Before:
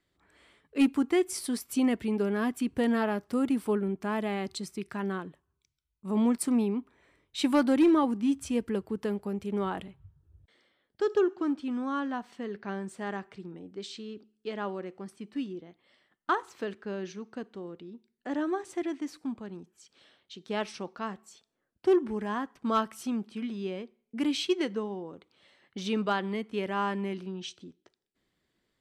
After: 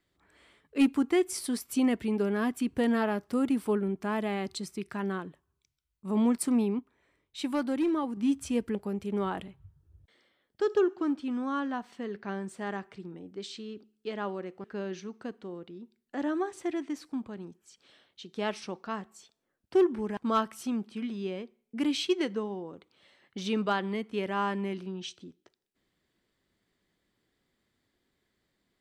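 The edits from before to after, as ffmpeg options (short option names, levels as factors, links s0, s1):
-filter_complex "[0:a]asplit=6[s0][s1][s2][s3][s4][s5];[s0]atrim=end=6.792[s6];[s1]atrim=start=6.788:end=8.172,asetpts=PTS-STARTPTS,volume=0.501[s7];[s2]atrim=start=8.168:end=8.752[s8];[s3]atrim=start=9.148:end=15.042[s9];[s4]atrim=start=16.758:end=22.292[s10];[s5]atrim=start=22.568[s11];[s6][s7]acrossfade=d=0.004:c1=hsin:c2=hsin[s12];[s12][s8]acrossfade=d=0.004:c1=hsin:c2=hsin[s13];[s13][s9]acrossfade=d=0.004:c1=hsin:c2=hsin[s14];[s14][s10]acrossfade=d=0.004:c1=hsin:c2=hsin[s15];[s15][s11]acrossfade=d=0.004:c1=hsin:c2=hsin"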